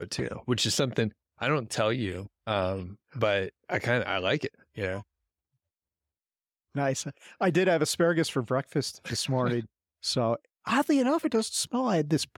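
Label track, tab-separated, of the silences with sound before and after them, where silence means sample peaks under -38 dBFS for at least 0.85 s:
5.010000	6.750000	silence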